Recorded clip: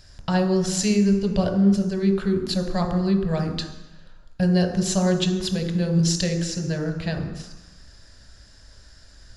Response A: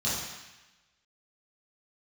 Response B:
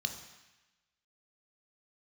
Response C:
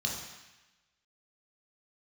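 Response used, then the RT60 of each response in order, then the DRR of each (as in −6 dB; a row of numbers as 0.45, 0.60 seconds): B; 1.0, 1.0, 1.0 seconds; −10.5, 4.5, −2.5 decibels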